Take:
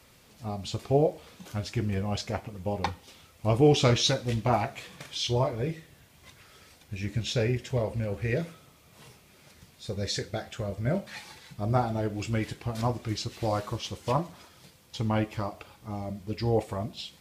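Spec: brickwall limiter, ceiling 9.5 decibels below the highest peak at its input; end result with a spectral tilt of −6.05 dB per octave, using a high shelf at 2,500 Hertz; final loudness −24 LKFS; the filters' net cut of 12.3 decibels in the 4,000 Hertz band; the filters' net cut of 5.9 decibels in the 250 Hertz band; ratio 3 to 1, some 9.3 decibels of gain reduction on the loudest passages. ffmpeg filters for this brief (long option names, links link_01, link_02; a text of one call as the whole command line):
ffmpeg -i in.wav -af "equalizer=frequency=250:width_type=o:gain=-8.5,highshelf=frequency=2500:gain=-8.5,equalizer=frequency=4000:width_type=o:gain=-8,acompressor=threshold=-32dB:ratio=3,volume=17.5dB,alimiter=limit=-13dB:level=0:latency=1" out.wav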